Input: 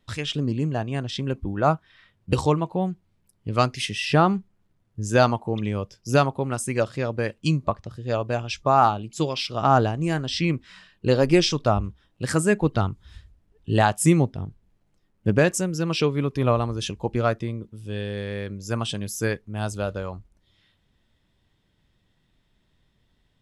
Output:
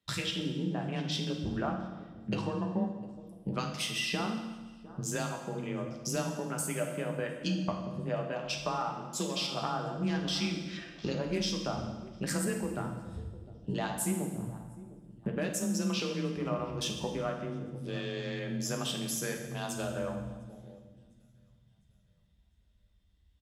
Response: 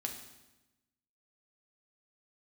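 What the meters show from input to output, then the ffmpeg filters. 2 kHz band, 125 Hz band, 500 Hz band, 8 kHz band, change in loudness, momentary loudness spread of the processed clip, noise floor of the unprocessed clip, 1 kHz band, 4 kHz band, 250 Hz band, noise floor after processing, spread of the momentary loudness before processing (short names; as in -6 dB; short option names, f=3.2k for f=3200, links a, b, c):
-9.5 dB, -12.0 dB, -12.0 dB, -4.0 dB, -10.5 dB, 11 LU, -68 dBFS, -14.0 dB, -5.0 dB, -8.5 dB, -66 dBFS, 12 LU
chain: -filter_complex "[0:a]afreqshift=25,highshelf=f=3k:g=8,acompressor=threshold=-34dB:ratio=6,aecho=1:1:705|1410|2115|2820:0.15|0.0673|0.0303|0.0136,afwtdn=0.00355[a];[1:a]atrim=start_sample=2205,asetrate=35721,aresample=44100[b];[a][b]afir=irnorm=-1:irlink=0,volume=1.5dB"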